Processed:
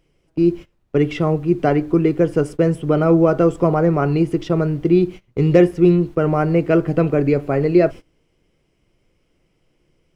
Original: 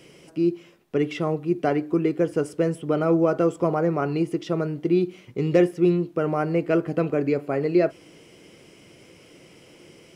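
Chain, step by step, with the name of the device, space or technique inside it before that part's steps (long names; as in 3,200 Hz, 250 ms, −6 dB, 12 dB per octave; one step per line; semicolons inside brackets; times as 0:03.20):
car interior (parametric band 130 Hz +6 dB 0.8 octaves; high-shelf EQ 4,600 Hz −5 dB; brown noise bed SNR 24 dB)
noise gate −34 dBFS, range −23 dB
level +5.5 dB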